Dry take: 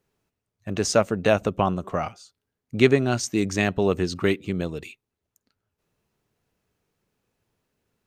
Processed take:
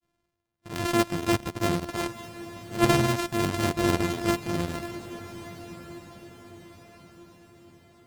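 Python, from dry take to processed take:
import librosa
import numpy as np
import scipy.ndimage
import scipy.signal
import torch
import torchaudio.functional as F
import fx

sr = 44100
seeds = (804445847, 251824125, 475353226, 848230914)

p1 = np.r_[np.sort(x[:len(x) // 128 * 128].reshape(-1, 128), axis=1).ravel(), x[len(x) // 128 * 128:]]
p2 = fx.transient(p1, sr, attack_db=-7, sustain_db=4)
p3 = fx.granulator(p2, sr, seeds[0], grain_ms=100.0, per_s=20.0, spray_ms=26.0, spread_st=0)
y = p3 + fx.echo_diffused(p3, sr, ms=1187, feedback_pct=43, wet_db=-14.5, dry=0)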